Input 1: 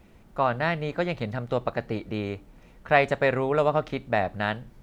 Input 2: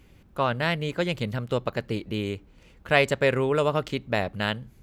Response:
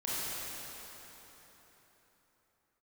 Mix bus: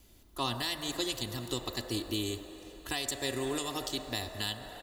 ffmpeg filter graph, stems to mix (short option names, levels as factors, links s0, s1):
-filter_complex "[0:a]lowpass=f=4300:w=0.5412,lowpass=f=4300:w=1.3066,volume=0.158,asplit=3[s0][s1][s2];[s1]volume=0.473[s3];[1:a]aecho=1:1:3:0.64,acrossover=split=300|3000[s4][s5][s6];[s5]acompressor=threshold=0.00562:ratio=2[s7];[s4][s7][s6]amix=inputs=3:normalize=0,adelay=1,volume=0.668,asplit=2[s8][s9];[s9]volume=0.106[s10];[s2]apad=whole_len=212961[s11];[s8][s11]sidechaingate=range=0.398:threshold=0.00112:ratio=16:detection=peak[s12];[2:a]atrim=start_sample=2205[s13];[s3][s10]amix=inputs=2:normalize=0[s14];[s14][s13]afir=irnorm=-1:irlink=0[s15];[s0][s12][s15]amix=inputs=3:normalize=0,aexciter=amount=4.2:drive=6:freq=3400,alimiter=limit=0.0944:level=0:latency=1:release=392"